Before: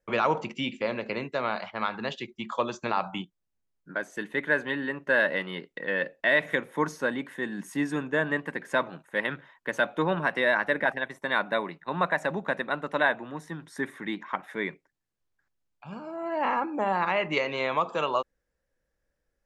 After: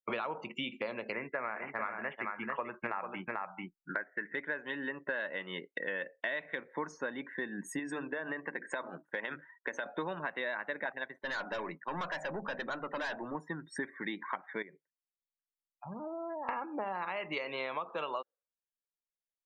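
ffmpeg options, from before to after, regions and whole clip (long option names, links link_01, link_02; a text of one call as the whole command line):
ffmpeg -i in.wav -filter_complex "[0:a]asettb=1/sr,asplit=3[link_01][link_02][link_03];[link_01]atrim=end=1.124[link_04];[link_02]atrim=start=1.12:end=4.35,asetpts=PTS-STARTPTS,afade=type=in:duration=0.004:curve=qsin,afade=type=out:start_time=3.226:duration=0.004:curve=qsin,highshelf=frequency=2900:width_type=q:width=3:gain=-14,aecho=1:1:441:0.531,atrim=end_sample=142443[link_05];[link_03]atrim=start=4.346[link_06];[link_04][link_05]acrossfade=duration=0.004:curve1=hsin:curve2=qsin[link_07];[link_07][link_06]acrossfade=duration=0.004:curve1=qsin:curve2=hsin,asettb=1/sr,asplit=3[link_08][link_09][link_10];[link_08]atrim=end=7.794[link_11];[link_09]atrim=start=7.79:end=9.86,asetpts=PTS-STARTPTS,afade=type=in:duration=0.004:curve=qsin,afade=type=out:start_time=2.066:duration=0.004:curve=qsin,bandreject=frequency=50:width_type=h:width=6,bandreject=frequency=100:width_type=h:width=6,bandreject=frequency=150:width_type=h:width=6,bandreject=frequency=200:width_type=h:width=6,bandreject=frequency=250:width_type=h:width=6,bandreject=frequency=300:width_type=h:width=6,bandreject=frequency=350:width_type=h:width=6,acompressor=threshold=-27dB:ratio=5:attack=3.2:release=140:knee=1:detection=peak,equalizer=frequency=74:width_type=o:width=1.3:gain=-10.5[link_12];[link_10]atrim=start=9.856[link_13];[link_11][link_12]acrossfade=duration=0.004:curve1=hsin:curve2=qsin[link_14];[link_14][link_13]acrossfade=duration=0.004:curve1=qsin:curve2=hsin,asettb=1/sr,asplit=3[link_15][link_16][link_17];[link_15]atrim=end=11.124[link_18];[link_16]atrim=start=11.12:end=13.35,asetpts=PTS-STARTPTS,afade=type=in:duration=0.004:curve=qsin,afade=type=out:start_time=2.226:duration=0.004:curve=qsin,bandreject=frequency=50:width_type=h:width=6,bandreject=frequency=100:width_type=h:width=6,bandreject=frequency=150:width_type=h:width=6,bandreject=frequency=200:width_type=h:width=6,bandreject=frequency=250:width_type=h:width=6,aeval=exprs='(tanh(44.7*val(0)+0.15)-tanh(0.15))/44.7':channel_layout=same[link_19];[link_17]atrim=start=13.346[link_20];[link_18][link_19]acrossfade=duration=0.004:curve1=hsin:curve2=qsin[link_21];[link_21][link_20]acrossfade=duration=0.004:curve1=qsin:curve2=hsin,asettb=1/sr,asplit=3[link_22][link_23][link_24];[link_22]atrim=end=14.624[link_25];[link_23]atrim=start=14.62:end=16.49,asetpts=PTS-STARTPTS,afade=type=in:duration=0.004:curve=qsin,afade=type=out:start_time=1.866:duration=0.004:curve=qsin,equalizer=frequency=5200:width=0.39:gain=-8.5,bandreject=frequency=50:width_type=h:width=6,bandreject=frequency=100:width_type=h:width=6,bandreject=frequency=150:width_type=h:width=6,acompressor=threshold=-40dB:ratio=8:attack=3.2:release=140:knee=1:detection=peak[link_26];[link_24]atrim=start=16.486[link_27];[link_25][link_26]acrossfade=duration=0.004:curve1=hsin:curve2=qsin[link_28];[link_28][link_27]acrossfade=duration=0.004:curve1=qsin:curve2=hsin,equalizer=frequency=68:width=0.34:gain=-9,afftdn=noise_reduction=36:noise_floor=-46,acompressor=threshold=-41dB:ratio=6,volume=6dB" out.wav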